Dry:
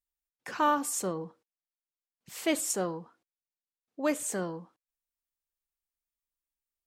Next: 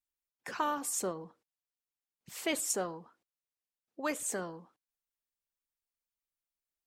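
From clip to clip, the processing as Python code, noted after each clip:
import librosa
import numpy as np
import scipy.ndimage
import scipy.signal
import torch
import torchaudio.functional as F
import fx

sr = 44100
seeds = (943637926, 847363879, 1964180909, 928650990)

y = fx.hpss(x, sr, part='harmonic', gain_db=-8)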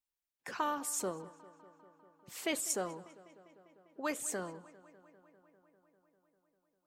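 y = fx.echo_filtered(x, sr, ms=199, feedback_pct=78, hz=4500.0, wet_db=-20)
y = y * librosa.db_to_amplitude(-2.0)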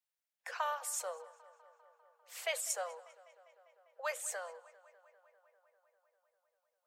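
y = scipy.signal.sosfilt(scipy.signal.cheby1(6, 3, 480.0, 'highpass', fs=sr, output='sos'), x)
y = y * librosa.db_to_amplitude(1.0)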